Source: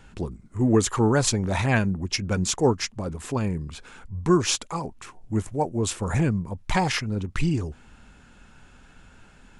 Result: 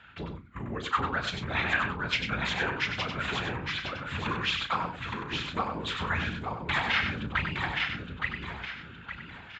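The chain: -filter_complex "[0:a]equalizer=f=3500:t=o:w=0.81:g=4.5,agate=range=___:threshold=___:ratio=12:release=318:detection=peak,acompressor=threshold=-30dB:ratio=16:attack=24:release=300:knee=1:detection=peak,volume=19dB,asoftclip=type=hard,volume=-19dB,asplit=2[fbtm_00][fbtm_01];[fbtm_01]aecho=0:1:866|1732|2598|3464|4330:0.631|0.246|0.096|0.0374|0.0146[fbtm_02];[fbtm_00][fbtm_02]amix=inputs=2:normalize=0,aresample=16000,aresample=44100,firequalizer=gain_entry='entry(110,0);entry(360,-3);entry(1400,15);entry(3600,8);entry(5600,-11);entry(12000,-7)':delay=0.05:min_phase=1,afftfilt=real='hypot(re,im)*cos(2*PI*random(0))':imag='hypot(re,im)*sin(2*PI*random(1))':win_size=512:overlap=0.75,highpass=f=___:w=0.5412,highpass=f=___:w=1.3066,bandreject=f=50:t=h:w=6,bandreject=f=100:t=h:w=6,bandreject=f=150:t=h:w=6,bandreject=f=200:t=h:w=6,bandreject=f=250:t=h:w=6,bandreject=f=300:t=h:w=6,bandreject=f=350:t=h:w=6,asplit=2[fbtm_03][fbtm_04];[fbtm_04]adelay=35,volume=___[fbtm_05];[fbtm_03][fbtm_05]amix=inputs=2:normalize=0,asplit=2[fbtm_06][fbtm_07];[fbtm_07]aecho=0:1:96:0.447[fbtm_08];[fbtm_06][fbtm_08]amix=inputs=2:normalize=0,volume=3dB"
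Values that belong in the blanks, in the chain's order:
-7dB, -38dB, 45, 45, -11.5dB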